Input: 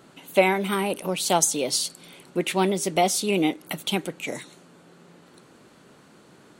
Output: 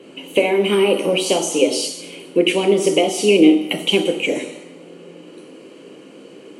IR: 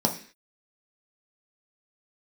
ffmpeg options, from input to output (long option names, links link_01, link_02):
-filter_complex "[0:a]highpass=frequency=230:width=0.5412,highpass=frequency=230:width=1.3066,acompressor=threshold=-24dB:ratio=6[link_01];[1:a]atrim=start_sample=2205,asetrate=23373,aresample=44100[link_02];[link_01][link_02]afir=irnorm=-1:irlink=0,volume=-6dB"